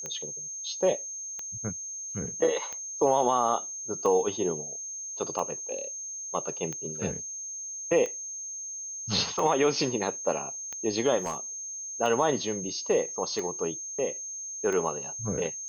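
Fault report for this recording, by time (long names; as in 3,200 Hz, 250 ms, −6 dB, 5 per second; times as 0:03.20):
scratch tick 45 rpm −21 dBFS
whistle 6,400 Hz −35 dBFS
0:11.18–0:11.38: clipping −26.5 dBFS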